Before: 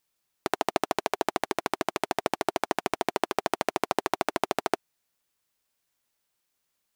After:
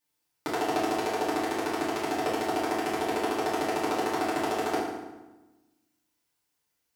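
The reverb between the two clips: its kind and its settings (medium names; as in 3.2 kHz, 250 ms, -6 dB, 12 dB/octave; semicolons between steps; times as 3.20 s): FDN reverb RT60 1.1 s, low-frequency decay 1.4×, high-frequency decay 0.75×, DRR -9 dB; trim -9 dB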